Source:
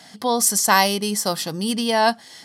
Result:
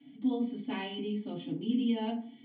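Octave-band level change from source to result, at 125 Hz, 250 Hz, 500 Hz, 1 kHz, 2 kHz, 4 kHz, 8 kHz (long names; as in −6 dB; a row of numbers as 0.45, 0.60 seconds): −11.0 dB, −5.0 dB, −16.0 dB, −24.0 dB, −23.5 dB, −20.0 dB, below −40 dB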